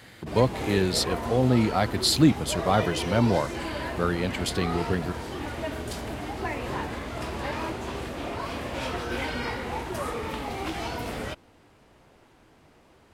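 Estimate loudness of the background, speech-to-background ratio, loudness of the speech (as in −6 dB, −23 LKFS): −32.5 LKFS, 7.5 dB, −25.0 LKFS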